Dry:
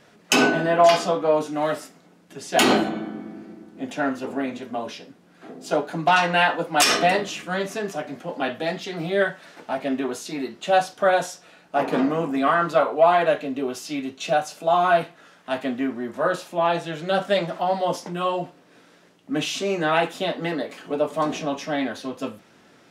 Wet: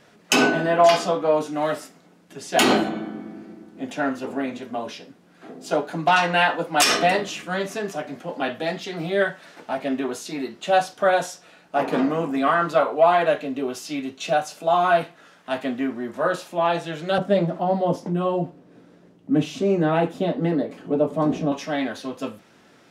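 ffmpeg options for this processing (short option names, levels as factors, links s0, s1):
-filter_complex "[0:a]asettb=1/sr,asplit=3[s0][s1][s2];[s0]atrim=end=17.184[s3];[s1]atrim=start=17.18:end=21.52,asetpts=PTS-STARTPTS,afade=t=in:d=0.004:c=qsin,afade=t=out:st=4.336:d=0.004:c=qsin,tiltshelf=f=670:g=9.5[s4];[s2]atrim=start=21.516[s5];[s3][s4]acrossfade=d=0.004:c1=hsin:c2=qsin[s6];[s6][s5]acrossfade=d=0.004:c1=qsin:c2=hsin"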